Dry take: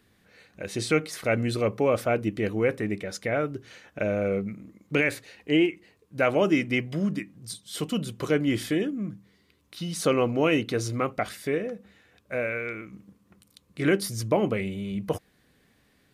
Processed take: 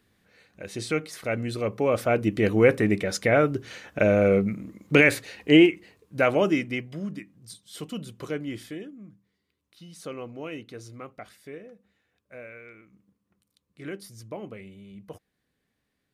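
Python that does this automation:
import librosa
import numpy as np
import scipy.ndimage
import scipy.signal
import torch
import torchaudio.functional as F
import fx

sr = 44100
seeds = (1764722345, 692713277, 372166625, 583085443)

y = fx.gain(x, sr, db=fx.line((1.55, -3.5), (2.61, 6.5), (5.56, 6.5), (6.47, 0.0), (6.88, -6.5), (8.25, -6.5), (9.01, -14.0)))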